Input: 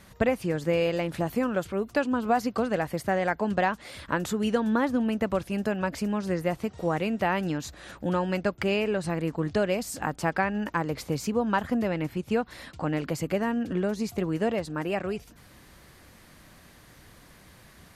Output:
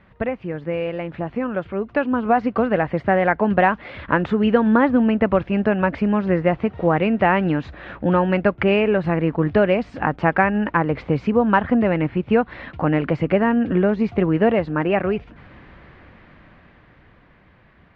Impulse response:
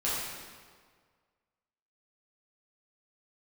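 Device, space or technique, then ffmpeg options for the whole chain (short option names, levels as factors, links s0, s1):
action camera in a waterproof case: -af "lowpass=f=2700:w=0.5412,lowpass=f=2700:w=1.3066,dynaudnorm=f=190:g=21:m=3.35" -ar 22050 -c:a aac -b:a 96k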